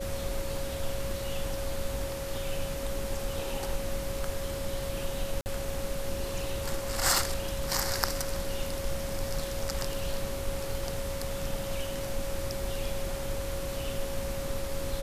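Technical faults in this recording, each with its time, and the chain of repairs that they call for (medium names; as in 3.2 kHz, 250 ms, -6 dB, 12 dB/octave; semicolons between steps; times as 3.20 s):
whine 550 Hz -36 dBFS
5.41–5.46 s: dropout 49 ms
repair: band-stop 550 Hz, Q 30; interpolate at 5.41 s, 49 ms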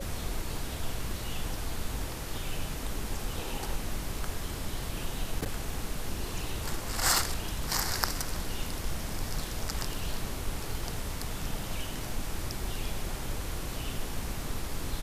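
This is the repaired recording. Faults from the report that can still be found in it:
nothing left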